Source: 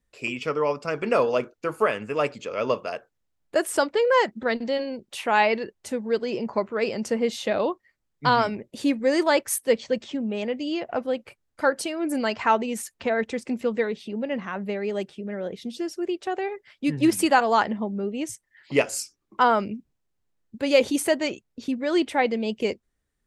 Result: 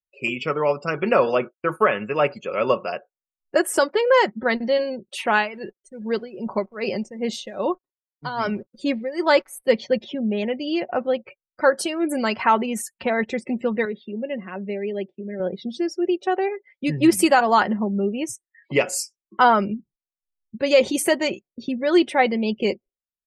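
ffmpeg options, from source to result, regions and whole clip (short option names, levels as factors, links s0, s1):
-filter_complex "[0:a]asettb=1/sr,asplit=3[s0][s1][s2];[s0]atrim=end=1.044[s3];[s1]atrim=start=1.04:end=2.75,asetpts=PTS-STARTPTS,afade=t=in:d=0.004:c=qsin,afade=t=out:st=1.706:d=0.004:c=qsin,agate=range=0.0224:threshold=0.0112:ratio=3:release=100:detection=peak,highshelf=f=3100:g=9,acrossover=split=2600[s4][s5];[s5]acompressor=threshold=0.00631:ratio=4:attack=1:release=60[s6];[s4][s6]amix=inputs=2:normalize=0[s7];[s2]atrim=start=2.746[s8];[s3][s7]acrossfade=d=0.004:c1=hsin:c2=qsin[s9];[s9][s8]acrossfade=d=0.004:c1=qsin:c2=hsin,asettb=1/sr,asplit=3[s10][s11][s12];[s10]atrim=end=5.324[s13];[s11]atrim=start=5.32:end=9.63,asetpts=PTS-STARTPTS,afade=t=in:d=0.004:c=qsin,afade=t=out:st=4.306:d=0.004:c=qsin,tremolo=f=2.5:d=0.85,acrusher=bits=9:dc=4:mix=0:aa=0.000001[s14];[s12]atrim=start=9.626[s15];[s13][s14]acrossfade=d=0.004:c1=hsin:c2=qsin[s16];[s16][s15]acrossfade=d=0.004:c1=qsin:c2=hsin,asettb=1/sr,asplit=3[s17][s18][s19];[s17]atrim=end=13.854[s20];[s18]atrim=start=13.85:end=15.4,asetpts=PTS-STARTPTS,afade=t=in:d=0.004:c=qsin,afade=t=out:st=1.546:d=0.004:c=qsin,agate=range=0.0224:threshold=0.00562:ratio=3:release=100:detection=peak,highpass=240,lowpass=4700,equalizer=f=1100:t=o:w=2:g=-9.5[s21];[s19]atrim=start=15.396[s22];[s20][s21]acrossfade=d=0.004:c1=hsin:c2=qsin[s23];[s23][s22]acrossfade=d=0.004:c1=qsin:c2=hsin,aecho=1:1:5.4:0.41,afftdn=nr=33:nf=-44,alimiter=level_in=2.66:limit=0.891:release=50:level=0:latency=1,volume=0.562"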